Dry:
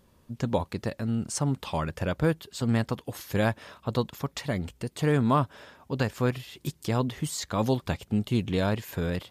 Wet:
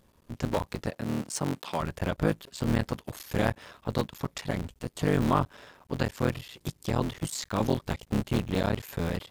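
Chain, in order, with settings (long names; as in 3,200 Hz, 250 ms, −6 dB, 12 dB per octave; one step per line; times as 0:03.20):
sub-harmonics by changed cycles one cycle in 3, muted
0:00.90–0:01.79: high-pass filter 97 Hz → 200 Hz 12 dB per octave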